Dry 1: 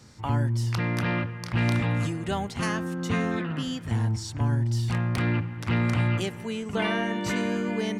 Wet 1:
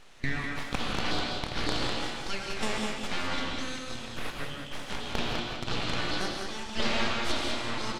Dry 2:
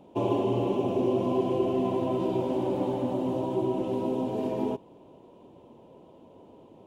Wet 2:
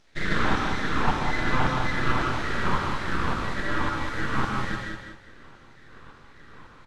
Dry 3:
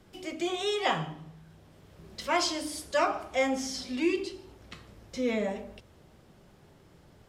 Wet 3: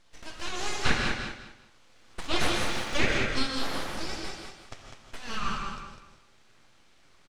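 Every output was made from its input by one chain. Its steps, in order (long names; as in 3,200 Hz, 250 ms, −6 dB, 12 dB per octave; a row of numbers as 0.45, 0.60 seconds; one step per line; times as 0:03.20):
RIAA equalisation recording
auto-filter high-pass saw down 1.8 Hz 440–1,900 Hz
full-wave rectification
high-frequency loss of the air 100 metres
on a send: repeating echo 201 ms, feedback 25%, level −6 dB
on the sum: reverb whose tail is shaped and stops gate 190 ms rising, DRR 3 dB
normalise the peak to −9 dBFS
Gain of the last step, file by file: −0.5, +7.0, +1.0 decibels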